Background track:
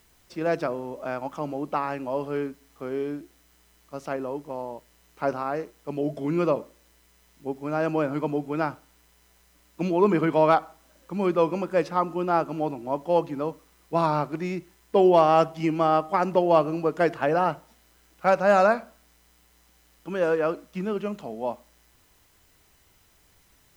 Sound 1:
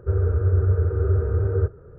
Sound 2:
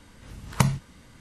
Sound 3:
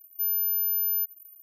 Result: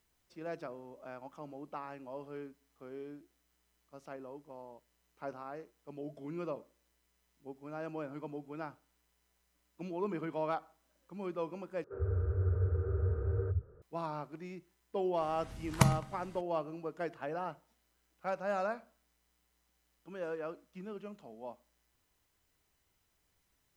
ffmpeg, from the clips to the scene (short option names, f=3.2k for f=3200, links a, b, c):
-filter_complex "[0:a]volume=-16dB[a];[1:a]acrossover=split=190[b][c];[b]adelay=90[d];[d][c]amix=inputs=2:normalize=0[e];[2:a]asplit=2[f][g];[g]adelay=105,lowpass=f=3.8k:p=1,volume=-19dB,asplit=2[h][i];[i]adelay=105,lowpass=f=3.8k:p=1,volume=0.53,asplit=2[j][k];[k]adelay=105,lowpass=f=3.8k:p=1,volume=0.53,asplit=2[l][m];[m]adelay=105,lowpass=f=3.8k:p=1,volume=0.53[n];[f][h][j][l][n]amix=inputs=5:normalize=0[o];[a]asplit=2[p][q];[p]atrim=end=11.844[r];[e]atrim=end=1.98,asetpts=PTS-STARTPTS,volume=-11.5dB[s];[q]atrim=start=13.816[t];[o]atrim=end=1.2,asetpts=PTS-STARTPTS,volume=-5dB,afade=t=in:d=0.004:c=hsin,afade=t=out:st=1.196:d=0.004:c=hsin,adelay=15210[u];[r][s]acrossfade=d=0.004:c1=hsin:c2=hsin[v];[v][t]acrossfade=d=0.004:c1=hsin:c2=hsin[w];[w][u]amix=inputs=2:normalize=0"